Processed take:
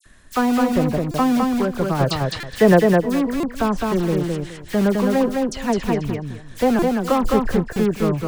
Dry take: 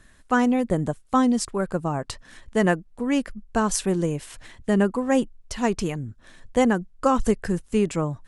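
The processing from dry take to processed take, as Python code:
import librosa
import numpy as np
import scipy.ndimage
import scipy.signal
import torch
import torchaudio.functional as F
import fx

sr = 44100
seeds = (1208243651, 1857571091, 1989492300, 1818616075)

p1 = fx.env_lowpass_down(x, sr, base_hz=1200.0, full_db=-18.5)
p2 = fx.graphic_eq(p1, sr, hz=(125, 500, 2000, 4000), db=(10, 8, 7, 8), at=(1.94, 2.74))
p3 = (np.mod(10.0 ** (18.5 / 20.0) * p2 + 1.0, 2.0) - 1.0) / 10.0 ** (18.5 / 20.0)
p4 = p2 + F.gain(torch.from_numpy(p3), -11.5).numpy()
p5 = fx.dispersion(p4, sr, late='lows', ms=57.0, hz=2500.0)
p6 = p5 + fx.echo_feedback(p5, sr, ms=210, feedback_pct=21, wet_db=-3.0, dry=0)
p7 = fx.buffer_glitch(p6, sr, at_s=(1.11, 2.4, 3.4, 6.79, 7.73), block=128, repeats=10)
y = F.gain(torch.from_numpy(p7), 2.0).numpy()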